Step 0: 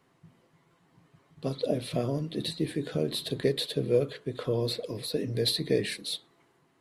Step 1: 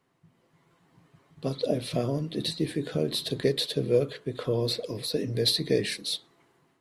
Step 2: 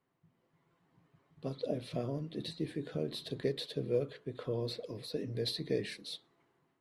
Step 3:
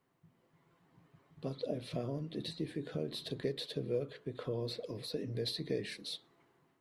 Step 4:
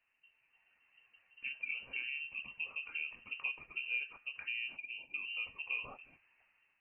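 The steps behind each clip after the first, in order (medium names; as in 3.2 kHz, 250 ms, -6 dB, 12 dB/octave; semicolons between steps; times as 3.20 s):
dynamic bell 5.6 kHz, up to +6 dB, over -52 dBFS, Q 2.1; level rider gain up to 7 dB; trim -5.5 dB
treble shelf 4.7 kHz -9.5 dB; trim -8.5 dB
compression 1.5:1, threshold -46 dBFS, peak gain reduction 7.5 dB; trim +3.5 dB
time-frequency box 4.77–5.15 s, 630–1900 Hz -19 dB; frequency inversion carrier 2.9 kHz; trim -3 dB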